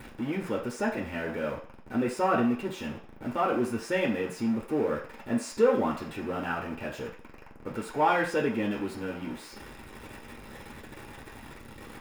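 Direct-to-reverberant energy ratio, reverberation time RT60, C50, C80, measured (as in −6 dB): −1.5 dB, 0.45 s, 8.0 dB, 12.0 dB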